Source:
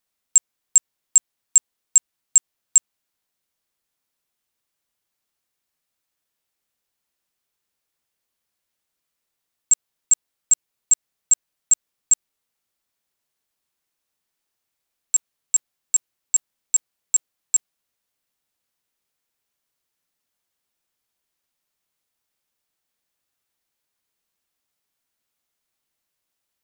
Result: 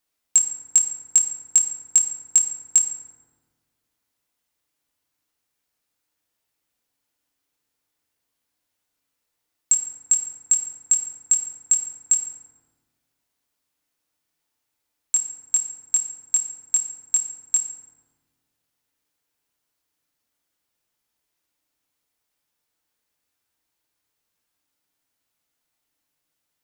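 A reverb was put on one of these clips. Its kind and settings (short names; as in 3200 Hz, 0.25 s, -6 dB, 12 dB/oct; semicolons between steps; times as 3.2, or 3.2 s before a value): FDN reverb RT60 1.4 s, low-frequency decay 1.5×, high-frequency decay 0.45×, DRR 3 dB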